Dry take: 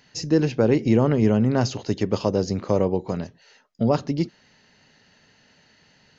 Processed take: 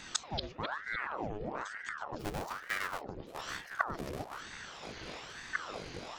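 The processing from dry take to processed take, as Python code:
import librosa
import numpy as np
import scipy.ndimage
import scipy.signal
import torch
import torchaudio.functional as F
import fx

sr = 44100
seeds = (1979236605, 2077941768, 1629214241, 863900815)

y = fx.halfwave_hold(x, sr, at=(2.19, 3.02))
y = fx.gate_flip(y, sr, shuts_db=-25.0, range_db=-30)
y = fx.echo_pitch(y, sr, ms=168, semitones=-6, count=3, db_per_echo=-6.0)
y = fx.ring_lfo(y, sr, carrier_hz=1000.0, swing_pct=80, hz=1.1)
y = y * 10.0 ** (12.0 / 20.0)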